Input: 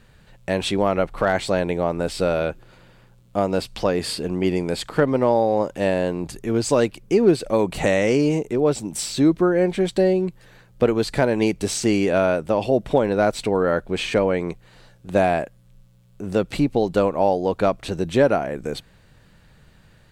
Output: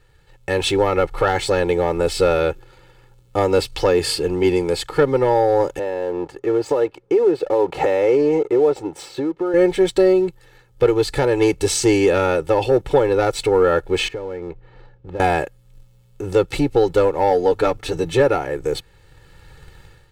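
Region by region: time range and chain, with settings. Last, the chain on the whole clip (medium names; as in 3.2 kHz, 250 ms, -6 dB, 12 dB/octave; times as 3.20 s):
5.79–9.54 s: band-pass filter 650 Hz, Q 0.82 + compression 4:1, threshold -25 dBFS
14.08–15.20 s: compression 3:1, threshold -33 dBFS + tape spacing loss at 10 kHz 39 dB
17.30–18.20 s: hum notches 50/100/150/200/250 Hz + comb 6.8 ms, depth 47%
whole clip: waveshaping leveller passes 1; comb 2.3 ms, depth 92%; level rider; trim -4.5 dB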